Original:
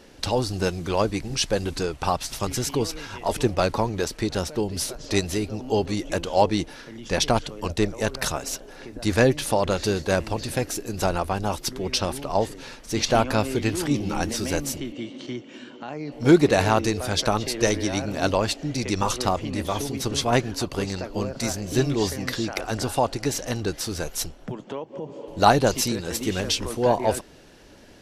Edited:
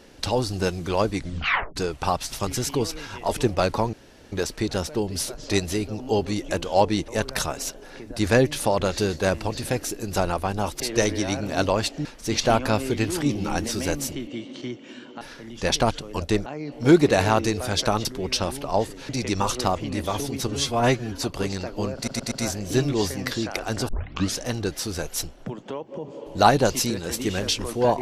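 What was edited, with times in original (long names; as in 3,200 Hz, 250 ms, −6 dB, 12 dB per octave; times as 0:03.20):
0:01.15: tape stop 0.61 s
0:03.93: splice in room tone 0.39 s
0:06.69–0:07.94: move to 0:15.86
0:11.66–0:12.70: swap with 0:17.45–0:18.70
0:20.09–0:20.56: time-stretch 1.5×
0:21.33: stutter 0.12 s, 4 plays
0:22.90: tape start 0.51 s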